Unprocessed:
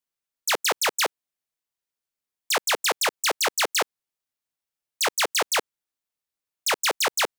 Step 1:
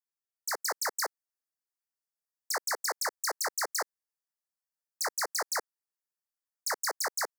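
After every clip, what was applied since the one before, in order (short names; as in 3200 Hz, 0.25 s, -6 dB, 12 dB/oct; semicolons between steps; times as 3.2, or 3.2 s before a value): Bessel high-pass 630 Hz; AGC gain up to 3.5 dB; elliptic band-stop 1900–4600 Hz, stop band 50 dB; gain -9 dB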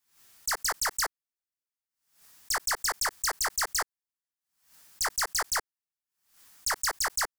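bell 520 Hz -8 dB 0.94 oct; sample leveller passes 2; backwards sustainer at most 110 dB/s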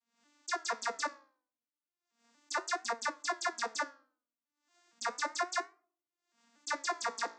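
arpeggiated vocoder major triad, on A#3, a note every 0.234 s; flange 0.34 Hz, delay 8.5 ms, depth 9.6 ms, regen +78%; on a send at -20 dB: reverb RT60 0.50 s, pre-delay 4 ms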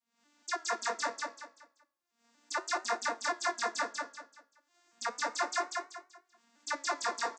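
feedback echo 0.192 s, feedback 31%, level -3 dB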